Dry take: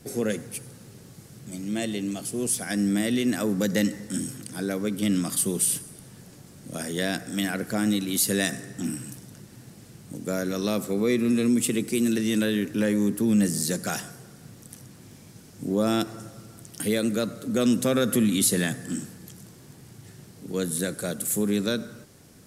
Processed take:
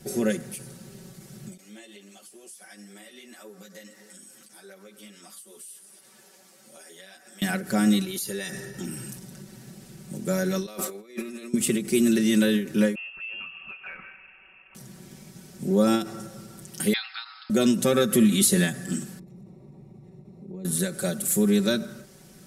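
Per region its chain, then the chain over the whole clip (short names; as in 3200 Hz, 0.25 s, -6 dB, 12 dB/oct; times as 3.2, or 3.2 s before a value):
1.57–7.42 HPF 510 Hz + compressor 3:1, threshold -47 dBFS + ensemble effect
8.04–9.1 notch 7800 Hz, Q 7.9 + comb 2.2 ms, depth 46% + compressor 4:1, threshold -32 dBFS
10.66–11.54 HPF 430 Hz + negative-ratio compressor -36 dBFS, ratio -0.5
12.95–14.75 HPF 290 Hz 24 dB/oct + inverted band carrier 3000 Hz + compressor 2.5:1, threshold -42 dBFS
16.93–17.5 brick-wall FIR band-pass 740–5300 Hz + high shelf 2500 Hz +8.5 dB
19.19–20.65 compressor 2:1, threshold -43 dBFS + running mean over 28 samples
whole clip: notch 1100 Hz, Q 24; comb 5.3 ms, depth 83%; ending taper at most 140 dB/s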